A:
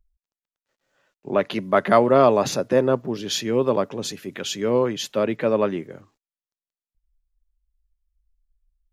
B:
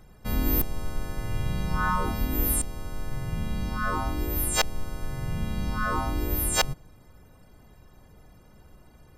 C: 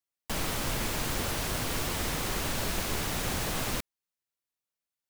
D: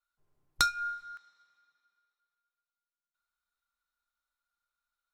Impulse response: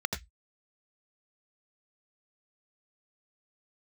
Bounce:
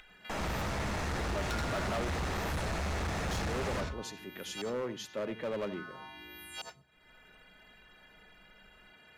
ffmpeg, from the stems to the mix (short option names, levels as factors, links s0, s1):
-filter_complex "[0:a]volume=0.224,asplit=3[s0][s1][s2];[s0]atrim=end=2.1,asetpts=PTS-STARTPTS,afade=t=out:st=2.096:d=0.004:c=hsin[s3];[s1]atrim=start=2.1:end=3.31,asetpts=PTS-STARTPTS,volume=0[s4];[s2]atrim=start=3.31,asetpts=PTS-STARTPTS,afade=t=in:d=0.004:c=hsin[s5];[s3][s4][s5]concat=n=3:v=0:a=1,asplit=2[s6][s7];[s7]volume=0.119[s8];[1:a]highpass=330,volume=0.596,asplit=2[s9][s10];[s10]volume=0.0944[s11];[2:a]lowpass=6400,volume=0.75,asplit=2[s12][s13];[s13]volume=0.473[s14];[3:a]adelay=900,volume=0.891,asplit=2[s15][s16];[s16]volume=0.188[s17];[s9][s15]amix=inputs=2:normalize=0,asuperpass=centerf=2300:order=8:qfactor=1.1,acompressor=threshold=0.00562:ratio=6,volume=1[s18];[4:a]atrim=start_sample=2205[s19];[s8][s11][s14][s17]amix=inputs=4:normalize=0[s20];[s20][s19]afir=irnorm=-1:irlink=0[s21];[s6][s12][s18][s21]amix=inputs=4:normalize=0,acompressor=mode=upward:threshold=0.00631:ratio=2.5,asoftclip=type=hard:threshold=0.0282"